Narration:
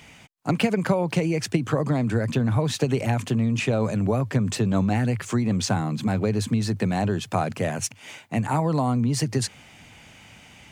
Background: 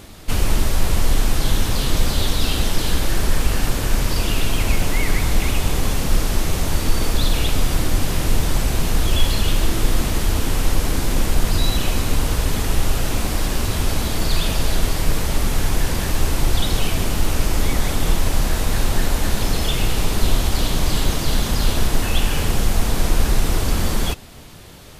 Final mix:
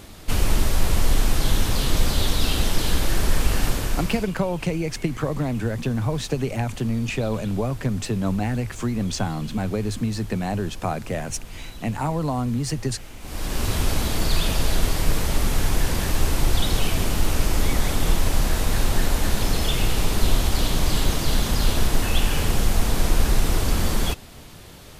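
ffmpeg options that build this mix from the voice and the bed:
-filter_complex "[0:a]adelay=3500,volume=-2dB[a];[1:a]volume=16dB,afade=t=out:st=3.67:d=0.65:silence=0.125893,afade=t=in:st=13.2:d=0.49:silence=0.125893[b];[a][b]amix=inputs=2:normalize=0"

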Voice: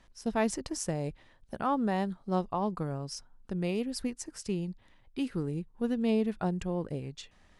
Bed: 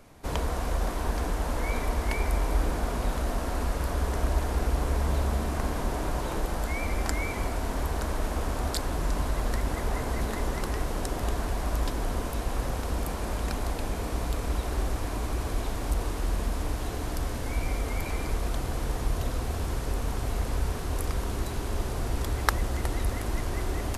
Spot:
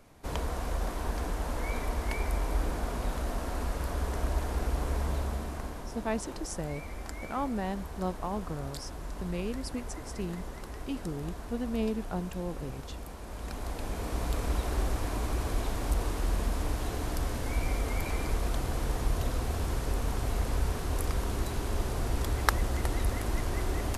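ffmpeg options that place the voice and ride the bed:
-filter_complex "[0:a]adelay=5700,volume=-3.5dB[a];[1:a]volume=6.5dB,afade=t=out:st=5:d=0.88:silence=0.421697,afade=t=in:st=13.26:d=1.12:silence=0.298538[b];[a][b]amix=inputs=2:normalize=0"

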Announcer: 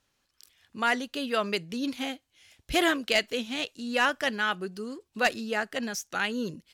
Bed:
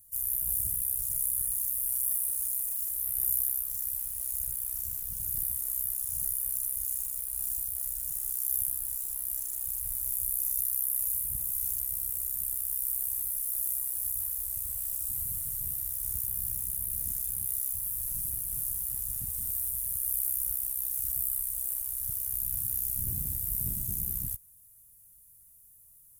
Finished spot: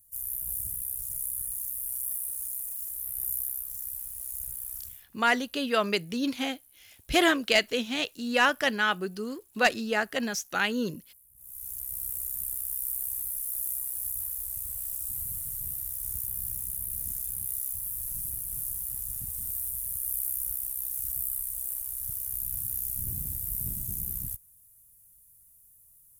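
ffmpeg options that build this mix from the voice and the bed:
-filter_complex "[0:a]adelay=4400,volume=2dB[a];[1:a]volume=22.5dB,afade=t=out:st=4.75:d=0.31:silence=0.0668344,afade=t=in:st=11.35:d=0.72:silence=0.0501187[b];[a][b]amix=inputs=2:normalize=0"

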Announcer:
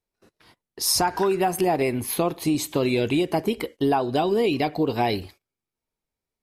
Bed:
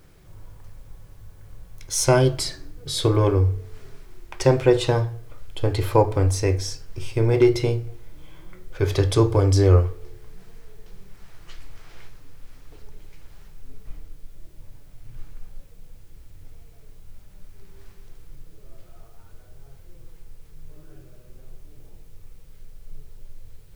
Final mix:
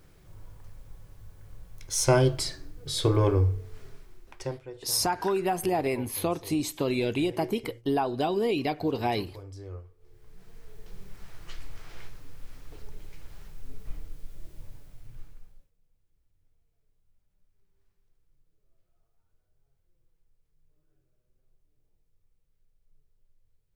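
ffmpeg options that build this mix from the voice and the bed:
-filter_complex "[0:a]adelay=4050,volume=-5dB[a];[1:a]volume=22dB,afade=t=out:st=3.85:d=0.76:silence=0.0794328,afade=t=in:st=9.97:d=1.07:silence=0.0501187,afade=t=out:st=14.57:d=1.14:silence=0.0446684[b];[a][b]amix=inputs=2:normalize=0"

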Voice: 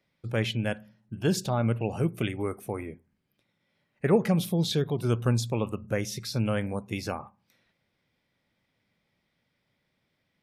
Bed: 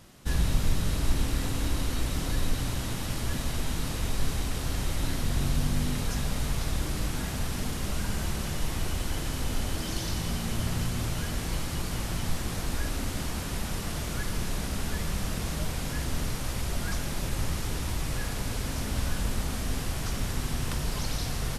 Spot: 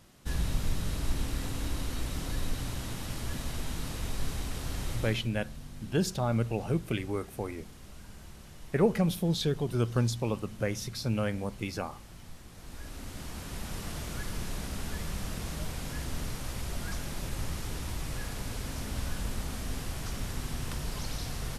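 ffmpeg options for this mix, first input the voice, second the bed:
-filter_complex "[0:a]adelay=4700,volume=-2.5dB[a];[1:a]volume=8dB,afade=t=out:st=4.92:d=0.37:silence=0.223872,afade=t=in:st=12.53:d=1.31:silence=0.223872[b];[a][b]amix=inputs=2:normalize=0"

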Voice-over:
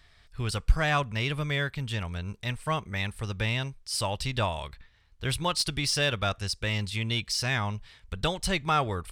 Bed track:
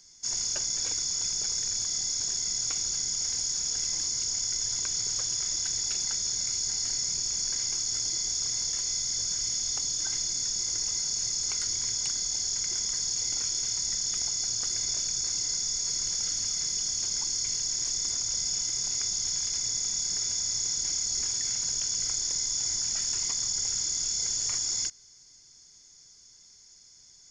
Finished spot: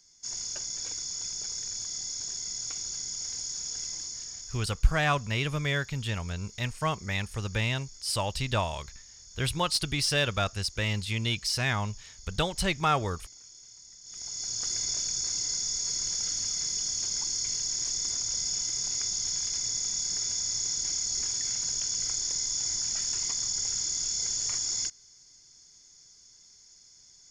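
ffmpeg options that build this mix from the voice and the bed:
-filter_complex "[0:a]adelay=4150,volume=0dB[a];[1:a]volume=14.5dB,afade=t=out:st=3.82:d=0.92:silence=0.16788,afade=t=in:st=14.03:d=0.67:silence=0.1[b];[a][b]amix=inputs=2:normalize=0"

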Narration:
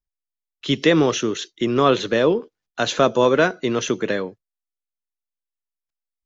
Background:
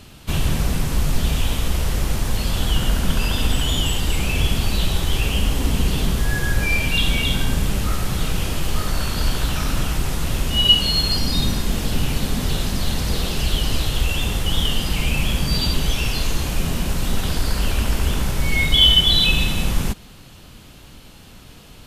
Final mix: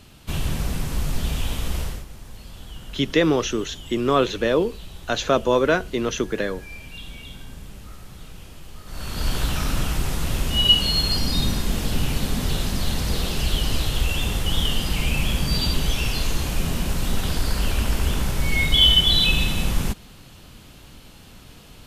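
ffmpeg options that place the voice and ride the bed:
-filter_complex "[0:a]adelay=2300,volume=-2.5dB[a];[1:a]volume=12dB,afade=t=out:st=1.8:d=0.25:silence=0.199526,afade=t=in:st=8.85:d=0.52:silence=0.141254[b];[a][b]amix=inputs=2:normalize=0"

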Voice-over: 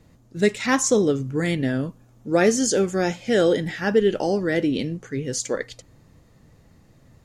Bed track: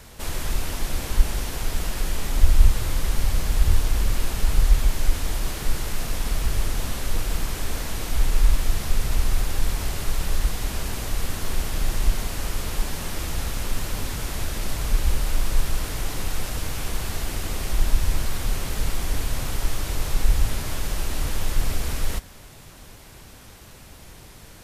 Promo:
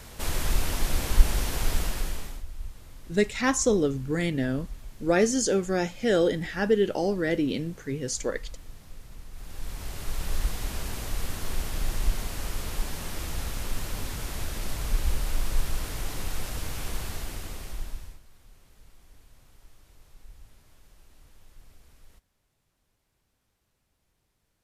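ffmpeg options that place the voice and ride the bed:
-filter_complex "[0:a]adelay=2750,volume=-4dB[a];[1:a]volume=18dB,afade=t=out:st=1.71:d=0.72:silence=0.0707946,afade=t=in:st=9.32:d=1.07:silence=0.125893,afade=t=out:st=16.96:d=1.24:silence=0.0562341[b];[a][b]amix=inputs=2:normalize=0"

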